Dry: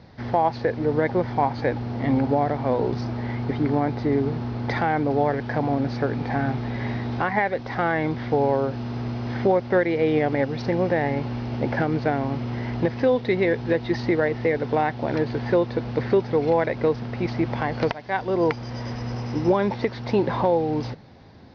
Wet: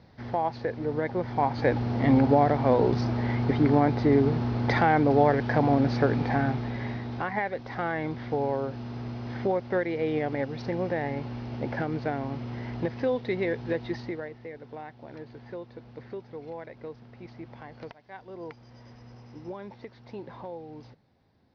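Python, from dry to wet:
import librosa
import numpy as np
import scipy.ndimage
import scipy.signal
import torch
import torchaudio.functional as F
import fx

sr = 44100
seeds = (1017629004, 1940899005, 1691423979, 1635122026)

y = fx.gain(x, sr, db=fx.line((1.16, -7.0), (1.76, 1.0), (6.13, 1.0), (7.05, -7.0), (13.86, -7.0), (14.39, -19.0)))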